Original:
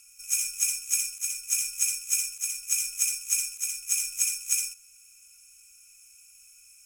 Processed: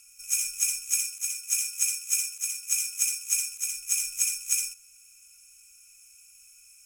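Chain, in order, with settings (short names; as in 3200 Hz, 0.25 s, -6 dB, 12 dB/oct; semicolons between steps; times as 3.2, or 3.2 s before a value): 1.06–3.52 steep high-pass 160 Hz 72 dB/oct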